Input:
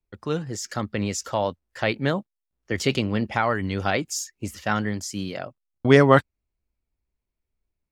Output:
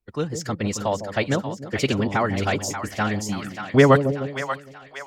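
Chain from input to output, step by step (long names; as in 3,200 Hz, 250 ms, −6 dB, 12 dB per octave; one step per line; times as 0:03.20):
phase-vocoder stretch with locked phases 0.64×
time-frequency box erased 0:03.23–0:03.64, 370–1,100 Hz
echo with a time of its own for lows and highs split 660 Hz, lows 153 ms, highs 584 ms, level −8 dB
level +1.5 dB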